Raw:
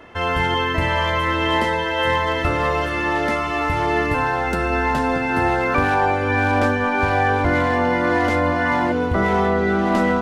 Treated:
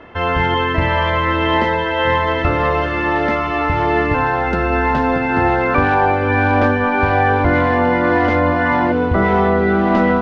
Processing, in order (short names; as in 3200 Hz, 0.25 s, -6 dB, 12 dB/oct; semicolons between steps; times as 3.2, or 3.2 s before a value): air absorption 210 m; gain +4.5 dB